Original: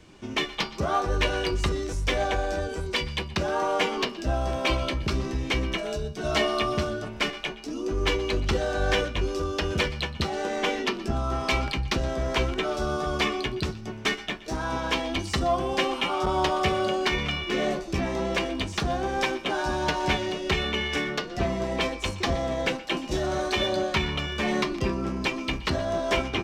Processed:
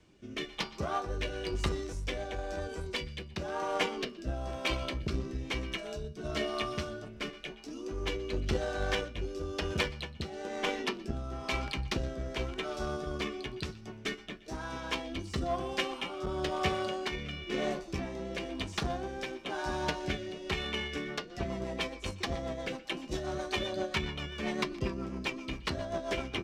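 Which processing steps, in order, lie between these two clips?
rotary cabinet horn 1 Hz, later 7.5 Hz, at 20.72 s; Chebyshev shaper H 7 -26 dB, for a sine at -9.5 dBFS; trim -4 dB

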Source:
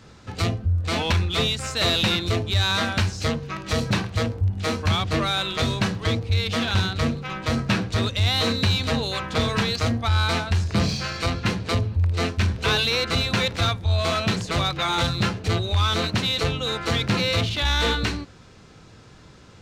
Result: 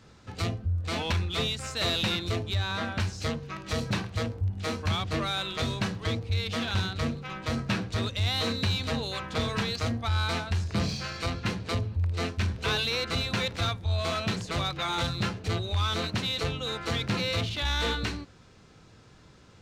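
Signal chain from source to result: 2.55–3.00 s: treble shelf 3.7 kHz -11.5 dB; trim -6.5 dB

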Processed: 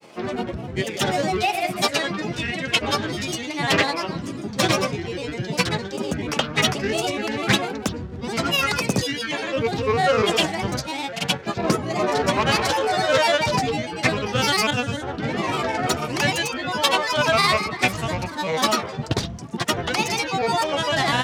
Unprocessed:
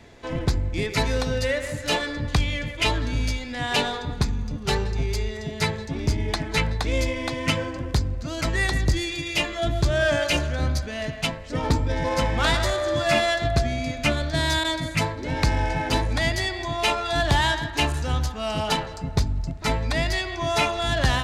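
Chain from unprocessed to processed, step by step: high-pass 130 Hz 24 dB/octave; granulator, pitch spread up and down by 7 st; trim +5 dB

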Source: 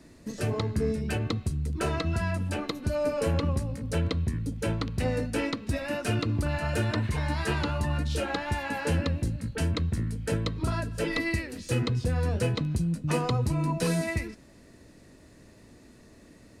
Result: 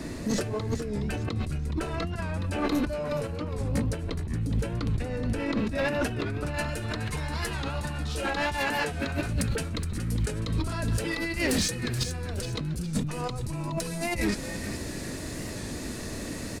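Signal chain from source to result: treble shelf 3.8 kHz -2 dB, from 5.17 s -7 dB, from 6.54 s +6.5 dB; compressor with a negative ratio -38 dBFS, ratio -1; saturation -28 dBFS, distortion -17 dB; frequency-shifting echo 419 ms, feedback 36%, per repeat -140 Hz, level -9.5 dB; warped record 45 rpm, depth 100 cents; trim +8.5 dB

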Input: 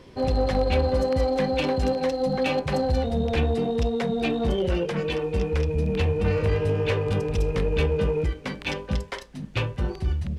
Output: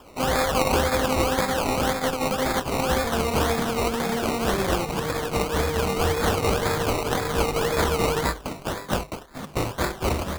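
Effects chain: formants flattened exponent 0.3; hum notches 50/100/150 Hz; decimation with a swept rate 21×, swing 60% 1.9 Hz

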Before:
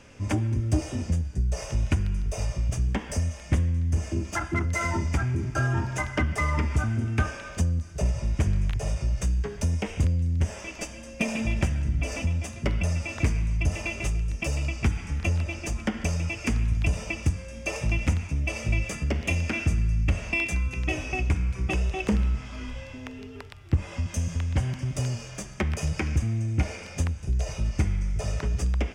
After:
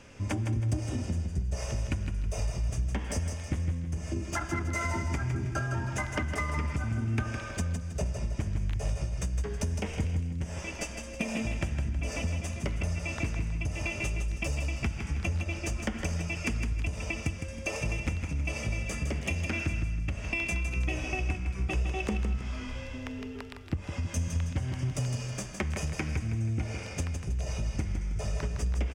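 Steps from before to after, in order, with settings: compression, threshold -27 dBFS, peak gain reduction 10 dB; feedback delay 160 ms, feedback 37%, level -7 dB; trim -1 dB

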